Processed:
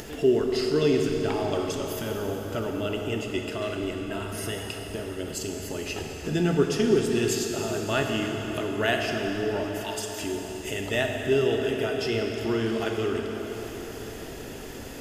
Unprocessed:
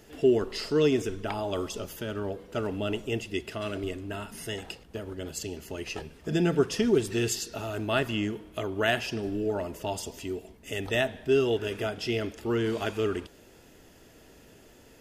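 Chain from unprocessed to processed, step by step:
0:09.64–0:10.21: high-pass filter 1,000 Hz 24 dB per octave
upward compression, threshold −29 dBFS
dense smooth reverb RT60 4.9 s, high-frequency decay 0.85×, DRR 1.5 dB

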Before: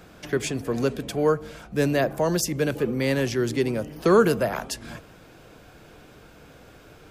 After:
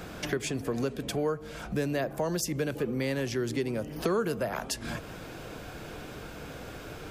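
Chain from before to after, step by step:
downward compressor 3 to 1, threshold −39 dBFS, peak gain reduction 19 dB
level +7 dB

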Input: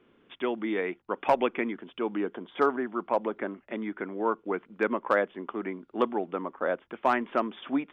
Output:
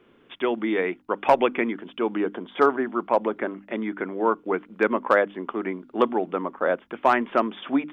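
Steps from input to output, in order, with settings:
mains-hum notches 50/100/150/200/250/300 Hz
level +5.5 dB

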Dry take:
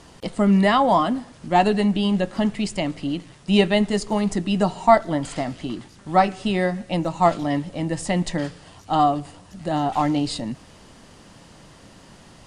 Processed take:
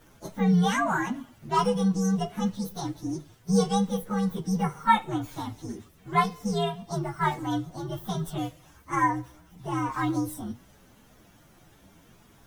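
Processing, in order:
partials spread apart or drawn together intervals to 129%
flanger 0.73 Hz, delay 8.7 ms, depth 2.8 ms, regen −70%

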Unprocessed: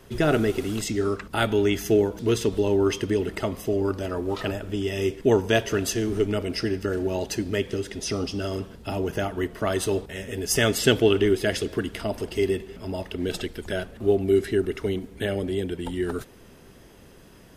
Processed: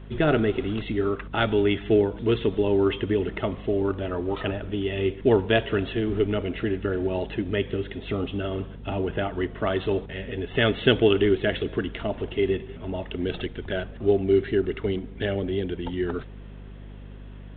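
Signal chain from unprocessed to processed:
mains hum 50 Hz, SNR 16 dB
A-law companding 64 kbit/s 8,000 Hz

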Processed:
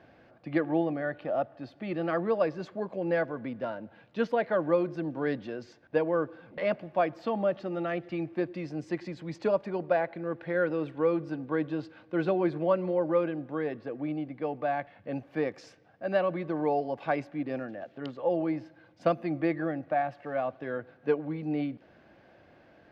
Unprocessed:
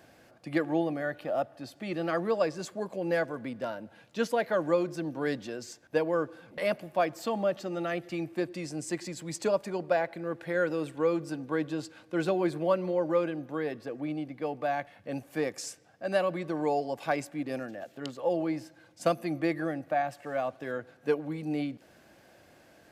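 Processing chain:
high-frequency loss of the air 280 metres
level +1.5 dB

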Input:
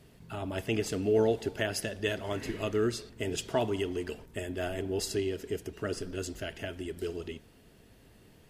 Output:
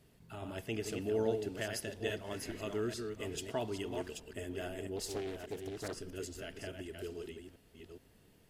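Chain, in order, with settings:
delay that plays each chunk backwards 420 ms, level −5.5 dB
high-shelf EQ 8,700 Hz +4.5 dB
0:04.96–0:05.95: highs frequency-modulated by the lows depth 0.54 ms
level −8 dB

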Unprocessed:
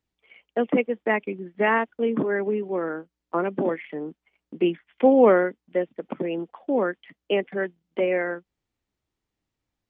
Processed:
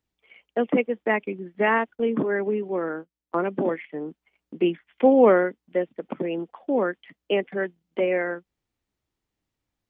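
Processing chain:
0:01.95–0:04.02: noise gate −36 dBFS, range −9 dB

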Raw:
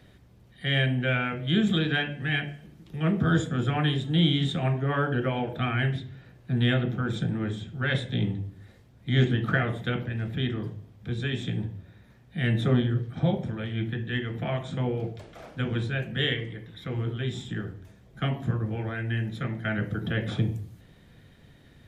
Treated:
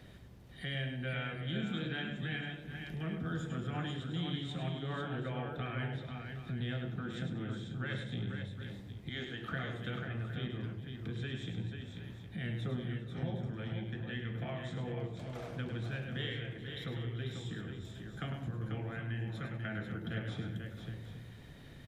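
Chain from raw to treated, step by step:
0:09.09–0:09.52: high-pass filter 680 Hz 6 dB per octave
downward compressor 2.5 to 1, threshold −44 dBFS, peak gain reduction 17.5 dB
on a send: multi-tap delay 103/190/398/491/764 ms −7.5/−18/−18.5/−6.5/−12.5 dB

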